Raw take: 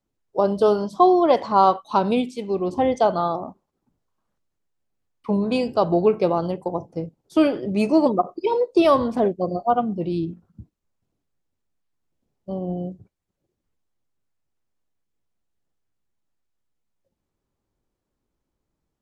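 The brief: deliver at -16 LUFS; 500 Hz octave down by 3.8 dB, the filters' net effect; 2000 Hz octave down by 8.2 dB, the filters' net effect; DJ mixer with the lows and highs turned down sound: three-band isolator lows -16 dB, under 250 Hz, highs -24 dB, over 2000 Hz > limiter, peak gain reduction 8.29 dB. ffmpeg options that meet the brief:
-filter_complex "[0:a]acrossover=split=250 2000:gain=0.158 1 0.0631[a][b][c];[a][b][c]amix=inputs=3:normalize=0,equalizer=f=500:t=o:g=-4,equalizer=f=2k:t=o:g=-4,volume=11.5dB,alimiter=limit=-4dB:level=0:latency=1"

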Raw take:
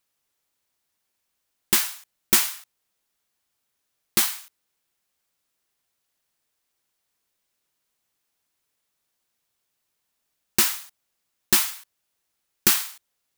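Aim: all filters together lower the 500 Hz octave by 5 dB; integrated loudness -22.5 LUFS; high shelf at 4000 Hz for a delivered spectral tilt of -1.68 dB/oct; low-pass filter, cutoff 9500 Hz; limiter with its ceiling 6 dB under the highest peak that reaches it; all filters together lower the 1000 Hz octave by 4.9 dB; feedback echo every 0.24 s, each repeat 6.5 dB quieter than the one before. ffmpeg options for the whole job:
-af "lowpass=9.5k,equalizer=f=500:t=o:g=-8,equalizer=f=1k:t=o:g=-4,highshelf=f=4k:g=-6.5,alimiter=limit=-15dB:level=0:latency=1,aecho=1:1:240|480|720|960|1200|1440:0.473|0.222|0.105|0.0491|0.0231|0.0109,volume=10dB"

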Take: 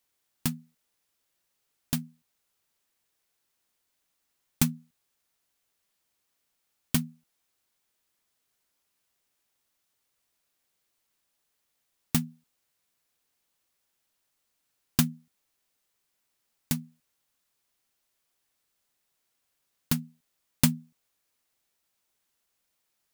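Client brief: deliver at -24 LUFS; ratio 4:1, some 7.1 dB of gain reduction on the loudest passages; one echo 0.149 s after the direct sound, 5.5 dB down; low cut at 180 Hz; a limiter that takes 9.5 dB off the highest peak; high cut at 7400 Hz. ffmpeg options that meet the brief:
-af "highpass=180,lowpass=7.4k,acompressor=threshold=-28dB:ratio=4,alimiter=limit=-21dB:level=0:latency=1,aecho=1:1:149:0.531,volume=18dB"

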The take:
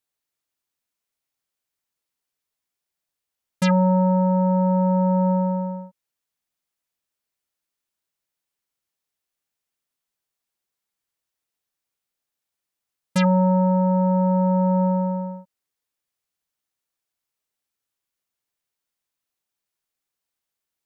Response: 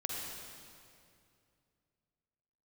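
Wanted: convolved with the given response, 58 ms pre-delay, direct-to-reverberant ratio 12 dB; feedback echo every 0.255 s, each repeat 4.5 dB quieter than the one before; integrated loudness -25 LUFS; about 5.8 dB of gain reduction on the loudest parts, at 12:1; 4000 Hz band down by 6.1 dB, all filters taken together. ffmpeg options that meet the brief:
-filter_complex "[0:a]equalizer=f=4k:t=o:g=-8,acompressor=threshold=-22dB:ratio=12,aecho=1:1:255|510|765|1020|1275|1530|1785|2040|2295:0.596|0.357|0.214|0.129|0.0772|0.0463|0.0278|0.0167|0.01,asplit=2[a][b];[1:a]atrim=start_sample=2205,adelay=58[c];[b][c]afir=irnorm=-1:irlink=0,volume=-14.5dB[d];[a][d]amix=inputs=2:normalize=0,volume=-0.5dB"

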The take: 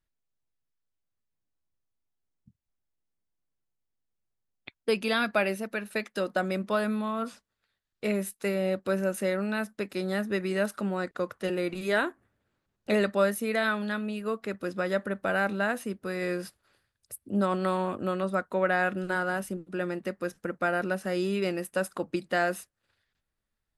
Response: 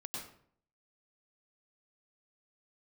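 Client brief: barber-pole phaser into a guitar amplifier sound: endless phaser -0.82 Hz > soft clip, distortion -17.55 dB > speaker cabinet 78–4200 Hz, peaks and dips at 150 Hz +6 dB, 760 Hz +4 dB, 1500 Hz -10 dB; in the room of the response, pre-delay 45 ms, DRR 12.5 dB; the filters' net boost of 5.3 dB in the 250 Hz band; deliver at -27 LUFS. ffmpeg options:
-filter_complex "[0:a]equalizer=f=250:t=o:g=6.5,asplit=2[a][b];[1:a]atrim=start_sample=2205,adelay=45[c];[b][c]afir=irnorm=-1:irlink=0,volume=-11.5dB[d];[a][d]amix=inputs=2:normalize=0,asplit=2[e][f];[f]afreqshift=-0.82[g];[e][g]amix=inputs=2:normalize=1,asoftclip=threshold=-20.5dB,highpass=78,equalizer=f=150:t=q:w=4:g=6,equalizer=f=760:t=q:w=4:g=4,equalizer=f=1.5k:t=q:w=4:g=-10,lowpass=f=4.2k:w=0.5412,lowpass=f=4.2k:w=1.3066,volume=4.5dB"

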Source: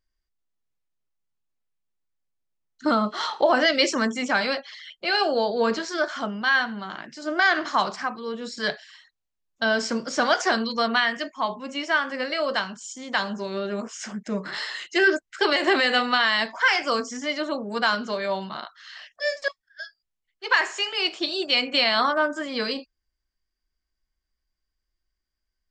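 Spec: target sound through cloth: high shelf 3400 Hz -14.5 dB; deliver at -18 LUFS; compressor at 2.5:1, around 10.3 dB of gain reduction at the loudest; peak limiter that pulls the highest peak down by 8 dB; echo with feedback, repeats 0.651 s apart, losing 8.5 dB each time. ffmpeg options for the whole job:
-af "acompressor=threshold=-31dB:ratio=2.5,alimiter=limit=-23dB:level=0:latency=1,highshelf=f=3.4k:g=-14.5,aecho=1:1:651|1302|1953|2604:0.376|0.143|0.0543|0.0206,volume=17.5dB"

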